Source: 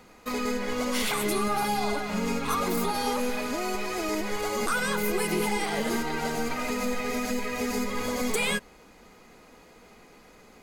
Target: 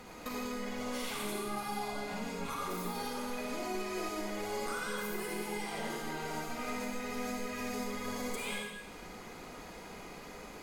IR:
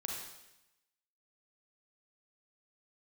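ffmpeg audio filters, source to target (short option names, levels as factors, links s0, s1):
-filter_complex "[0:a]acompressor=threshold=0.00891:ratio=8[s0];[1:a]atrim=start_sample=2205,asetrate=37044,aresample=44100[s1];[s0][s1]afir=irnorm=-1:irlink=0,volume=1.58"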